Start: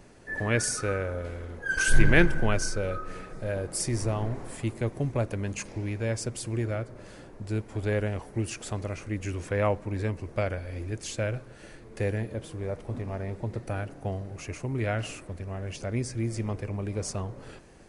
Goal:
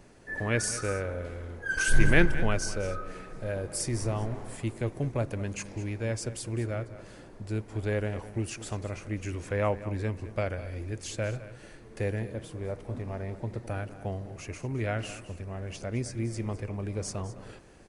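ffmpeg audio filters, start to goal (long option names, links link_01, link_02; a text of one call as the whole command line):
ffmpeg -i in.wav -af "aecho=1:1:210:0.178,volume=-2dB" out.wav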